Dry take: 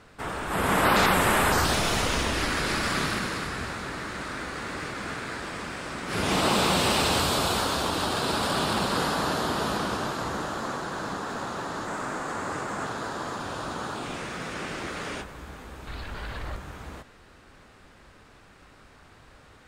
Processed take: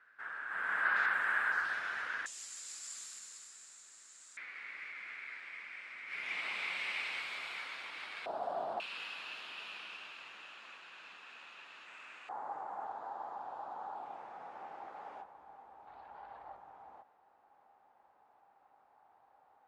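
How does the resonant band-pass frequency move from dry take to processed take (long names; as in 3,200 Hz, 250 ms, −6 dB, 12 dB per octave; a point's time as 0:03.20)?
resonant band-pass, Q 7.9
1,600 Hz
from 0:02.26 7,300 Hz
from 0:04.37 2,200 Hz
from 0:08.26 700 Hz
from 0:08.80 2,600 Hz
from 0:12.29 810 Hz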